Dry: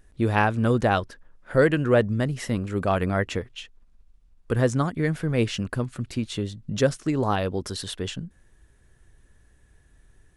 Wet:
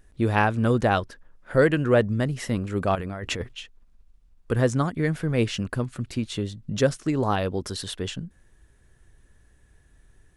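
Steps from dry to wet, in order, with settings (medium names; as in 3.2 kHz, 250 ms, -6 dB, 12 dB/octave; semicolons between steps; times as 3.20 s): 2.95–3.53 s: compressor with a negative ratio -31 dBFS, ratio -1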